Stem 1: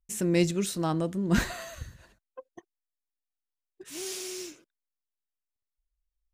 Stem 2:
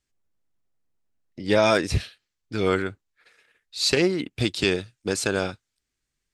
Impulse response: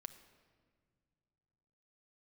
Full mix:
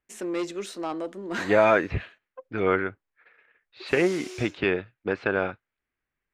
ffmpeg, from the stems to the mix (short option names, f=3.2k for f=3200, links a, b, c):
-filter_complex "[0:a]highpass=f=260:w=0.5412,highpass=f=260:w=1.3066,aemphasis=mode=reproduction:type=75fm,asoftclip=type=tanh:threshold=-22.5dB,volume=3dB[a];[1:a]lowpass=f=2.3k:w=0.5412,lowpass=f=2.3k:w=1.3066,volume=2.5dB[b];[a][b]amix=inputs=2:normalize=0,lowshelf=f=310:g=-9"